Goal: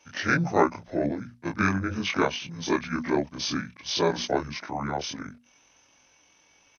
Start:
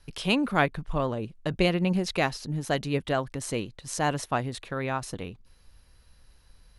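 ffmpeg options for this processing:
-af "afftfilt=real='re':imag='-im':win_size=2048:overlap=0.75,asetrate=24750,aresample=44100,atempo=1.7818,highpass=190,highshelf=f=4k:g=8,bandreject=f=60:t=h:w=6,bandreject=f=120:t=h:w=6,bandreject=f=180:t=h:w=6,bandreject=f=240:t=h:w=6,volume=8dB"

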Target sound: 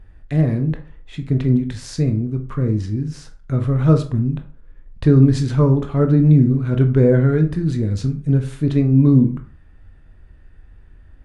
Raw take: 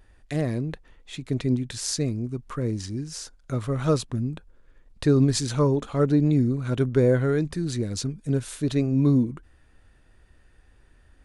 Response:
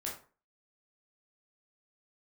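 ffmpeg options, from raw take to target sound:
-filter_complex "[0:a]bass=f=250:g=9,treble=f=4k:g=-12,asplit=2[a][b];[1:a]atrim=start_sample=2205[c];[b][c]afir=irnorm=-1:irlink=0,volume=-1.5dB[d];[a][d]amix=inputs=2:normalize=0,volume=-2dB"

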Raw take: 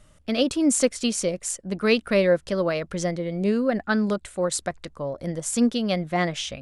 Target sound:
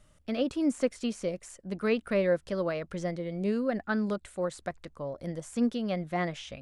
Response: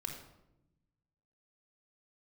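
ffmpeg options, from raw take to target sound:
-filter_complex "[0:a]acrossover=split=2500[a][b];[b]acompressor=threshold=-39dB:ratio=4:attack=1:release=60[c];[a][c]amix=inputs=2:normalize=0,volume=-6.5dB"

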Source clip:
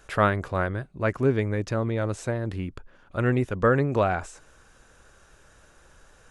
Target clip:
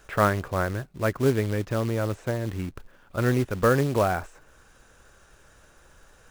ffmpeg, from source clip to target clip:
-filter_complex "[0:a]acrossover=split=2700[a][b];[b]acompressor=threshold=-57dB:ratio=6[c];[a][c]amix=inputs=2:normalize=0,acrusher=bits=4:mode=log:mix=0:aa=0.000001"

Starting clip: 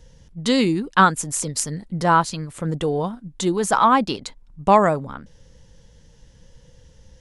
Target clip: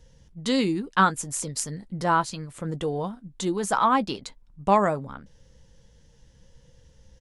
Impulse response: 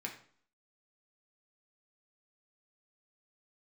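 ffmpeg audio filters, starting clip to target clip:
-filter_complex "[0:a]asplit=2[a][b];[b]adelay=15,volume=-14dB[c];[a][c]amix=inputs=2:normalize=0,volume=-5.5dB"

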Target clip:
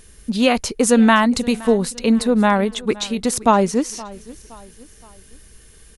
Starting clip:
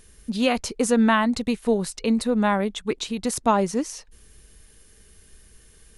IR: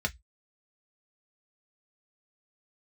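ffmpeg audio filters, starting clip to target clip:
-filter_complex "[0:a]asettb=1/sr,asplit=3[a][b][c];[a]atrim=end=0.874[d];[b]atrim=start=0.87:end=1.61,asetpts=PTS-STARTPTS,afade=t=in:d=0.004:c=qsin,afade=t=out:st=0.736:d=0.004:c=qsin,highshelf=f=5.9k:g=6[e];[c]atrim=start=1.606[f];[d][e]acrossfade=d=0.004:c1=hsin:c2=qsin[g];[g][f]acrossfade=d=0.004:c1=qsin:c2=hsin,aecho=1:1:519|1038|1557:0.0944|0.0425|0.0191,volume=5.5dB"

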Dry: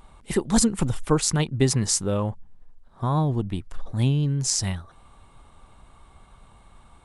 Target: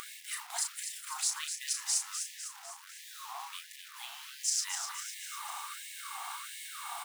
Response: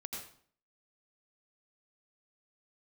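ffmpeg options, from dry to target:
-filter_complex "[0:a]highshelf=f=5.6k:g=4.5,bandreject=f=60:t=h:w=6,bandreject=f=120:t=h:w=6,bandreject=f=180:t=h:w=6,bandreject=f=240:t=h:w=6,bandreject=f=300:t=h:w=6,bandreject=f=360:t=h:w=6,bandreject=f=420:t=h:w=6,bandreject=f=480:t=h:w=6,bandreject=f=540:t=h:w=6,bandreject=f=600:t=h:w=6,asplit=2[a][b];[b]acompressor=mode=upward:threshold=-25dB:ratio=2.5,volume=-2dB[c];[a][c]amix=inputs=2:normalize=0,alimiter=limit=-8.5dB:level=0:latency=1:release=464,areverse,acompressor=threshold=-31dB:ratio=8,areverse,acrusher=bits=7:mix=0:aa=0.000001,asplit=2[d][e];[e]adelay=34,volume=-6dB[f];[d][f]amix=inputs=2:normalize=0,asplit=8[g][h][i][j][k][l][m][n];[h]adelay=251,afreqshift=37,volume=-7.5dB[o];[i]adelay=502,afreqshift=74,volume=-12.9dB[p];[j]adelay=753,afreqshift=111,volume=-18.2dB[q];[k]adelay=1004,afreqshift=148,volume=-23.6dB[r];[l]adelay=1255,afreqshift=185,volume=-28.9dB[s];[m]adelay=1506,afreqshift=222,volume=-34.3dB[t];[n]adelay=1757,afreqshift=259,volume=-39.6dB[u];[g][o][p][q][r][s][t][u]amix=inputs=8:normalize=0,afftfilt=real='re*gte(b*sr/1024,670*pow(1700/670,0.5+0.5*sin(2*PI*1.4*pts/sr)))':imag='im*gte(b*sr/1024,670*pow(1700/670,0.5+0.5*sin(2*PI*1.4*pts/sr)))':win_size=1024:overlap=0.75,volume=2dB"

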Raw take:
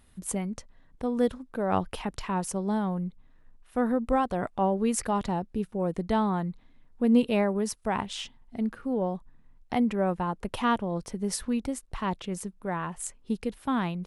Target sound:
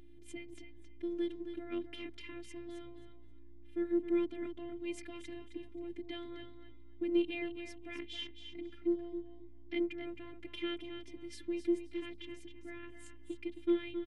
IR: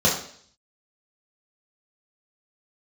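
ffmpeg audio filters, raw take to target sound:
-filter_complex "[0:a]asplit=3[a][b][c];[a]bandpass=f=270:t=q:w=8,volume=0dB[d];[b]bandpass=f=2.29k:t=q:w=8,volume=-6dB[e];[c]bandpass=f=3.01k:t=q:w=8,volume=-9dB[f];[d][e][f]amix=inputs=3:normalize=0,lowshelf=f=220:g=-6.5,bandreject=f=60:t=h:w=6,bandreject=f=120:t=h:w=6,bandreject=f=180:t=h:w=6,aeval=exprs='val(0)+0.00158*(sin(2*PI*60*n/s)+sin(2*PI*2*60*n/s)/2+sin(2*PI*3*60*n/s)/3+sin(2*PI*4*60*n/s)/4+sin(2*PI*5*60*n/s)/5)':c=same,afftfilt=real='hypot(re,im)*cos(PI*b)':imag='0':win_size=512:overlap=0.75,asplit=2[g][h];[h]aecho=0:1:266|532|798:0.355|0.0674|0.0128[i];[g][i]amix=inputs=2:normalize=0,volume=8.5dB"

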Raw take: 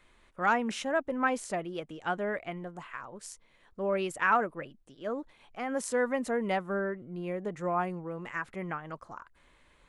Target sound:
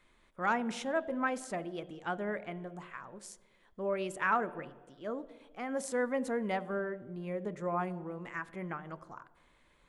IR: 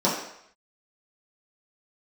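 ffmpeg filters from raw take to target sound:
-filter_complex "[0:a]asplit=2[a][b];[1:a]atrim=start_sample=2205,asetrate=26460,aresample=44100[c];[b][c]afir=irnorm=-1:irlink=0,volume=-31dB[d];[a][d]amix=inputs=2:normalize=0,volume=-4.5dB"

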